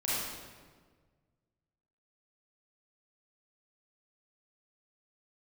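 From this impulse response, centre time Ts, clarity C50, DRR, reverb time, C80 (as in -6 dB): 112 ms, -4.0 dB, -9.5 dB, 1.6 s, -0.5 dB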